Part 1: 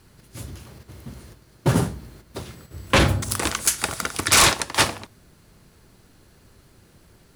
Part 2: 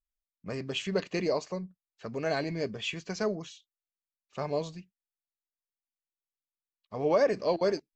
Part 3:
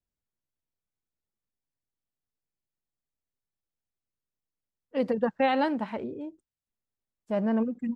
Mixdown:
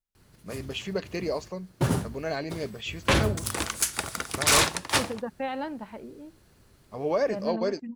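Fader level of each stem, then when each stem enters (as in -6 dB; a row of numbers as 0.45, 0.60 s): -5.5, -1.0, -7.5 dB; 0.15, 0.00, 0.00 s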